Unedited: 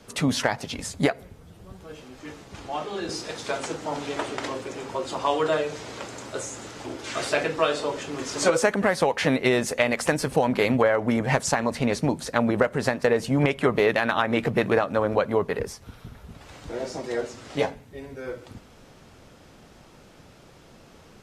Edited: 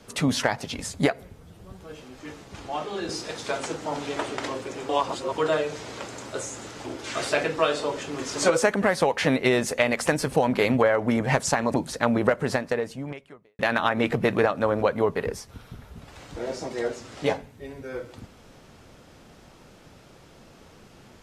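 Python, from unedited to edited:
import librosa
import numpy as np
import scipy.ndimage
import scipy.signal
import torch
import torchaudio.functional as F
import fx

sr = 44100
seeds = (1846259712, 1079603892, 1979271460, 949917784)

y = fx.edit(x, sr, fx.reverse_span(start_s=4.89, length_s=0.49),
    fx.cut(start_s=11.74, length_s=0.33),
    fx.fade_out_span(start_s=12.8, length_s=1.12, curve='qua'), tone=tone)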